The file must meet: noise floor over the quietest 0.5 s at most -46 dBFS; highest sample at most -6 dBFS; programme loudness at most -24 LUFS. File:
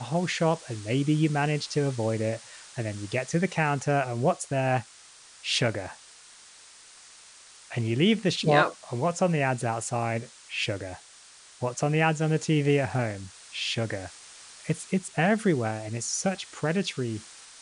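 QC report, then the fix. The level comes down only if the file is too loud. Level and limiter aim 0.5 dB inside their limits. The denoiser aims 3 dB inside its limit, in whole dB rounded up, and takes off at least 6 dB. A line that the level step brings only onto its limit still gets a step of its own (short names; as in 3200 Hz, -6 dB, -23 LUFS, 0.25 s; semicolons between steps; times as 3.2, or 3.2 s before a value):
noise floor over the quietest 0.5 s -52 dBFS: OK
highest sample -8.0 dBFS: OK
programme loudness -27.5 LUFS: OK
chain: none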